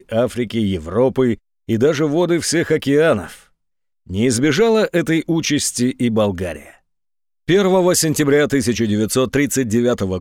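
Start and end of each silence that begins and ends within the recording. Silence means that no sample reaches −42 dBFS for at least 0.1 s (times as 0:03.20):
0:01.38–0:01.68
0:03.43–0:04.07
0:06.76–0:07.48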